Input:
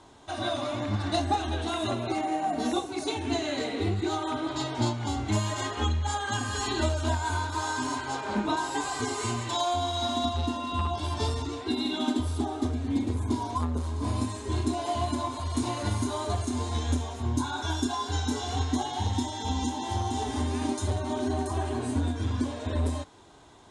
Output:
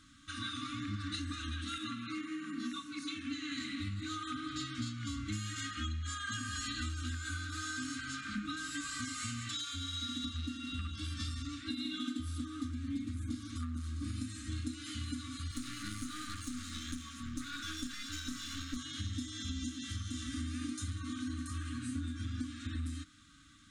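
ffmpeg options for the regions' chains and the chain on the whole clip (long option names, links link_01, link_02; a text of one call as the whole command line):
ffmpeg -i in.wav -filter_complex "[0:a]asettb=1/sr,asplit=3[link_01][link_02][link_03];[link_01]atrim=end=1.784[link_04];[link_02]atrim=start=1.78:end=3.52,asetpts=PTS-STARTPTS,afade=type=in:duration=0.004:curve=qsin,afade=type=out:start_time=1.736:duration=0.004:curve=qsin,highpass=170,highshelf=frequency=6100:gain=-10.5[link_05];[link_03]atrim=start=3.516[link_06];[link_04][link_05]acrossfade=duration=0.004:curve1=hsin:curve2=qsin[link_07];[link_07][link_06]acrossfade=duration=0.004:curve1=qsin:curve2=hsin,asettb=1/sr,asplit=3[link_08][link_09][link_10];[link_08]atrim=end=15.514[link_11];[link_09]atrim=start=15.51:end=18.77,asetpts=PTS-STARTPTS,afade=type=in:duration=0.004:curve=qsin,afade=type=out:start_time=3.256:duration=0.004:curve=qsin,highpass=140,aeval=exprs='clip(val(0),-1,0.0141)':channel_layout=same[link_12];[link_10]atrim=start=18.766[link_13];[link_11][link_12]acrossfade=duration=0.004:curve1=hsin:curve2=qsin[link_14];[link_14][link_13]acrossfade=duration=0.004:curve1=qsin:curve2=hsin,afftfilt=real='re*(1-between(b*sr/4096,320,1100))':imag='im*(1-between(b*sr/4096,320,1100))':win_size=4096:overlap=0.75,equalizer=frequency=120:width_type=o:width=1.6:gain=-3.5,acompressor=threshold=-35dB:ratio=2.5,volume=-2.5dB" out.wav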